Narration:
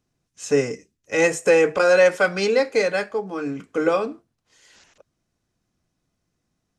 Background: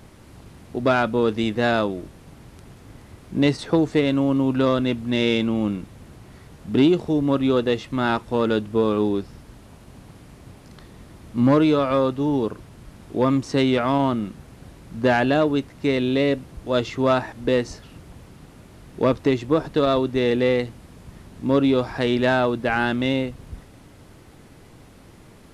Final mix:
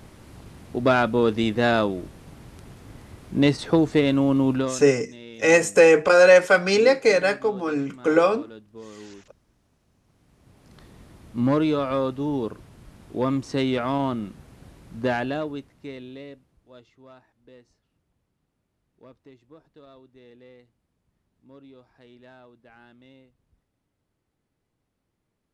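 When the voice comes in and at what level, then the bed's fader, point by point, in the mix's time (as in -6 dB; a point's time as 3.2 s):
4.30 s, +2.0 dB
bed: 4.54 s 0 dB
4.91 s -22 dB
10.01 s -22 dB
10.82 s -4.5 dB
15 s -4.5 dB
16.99 s -30.5 dB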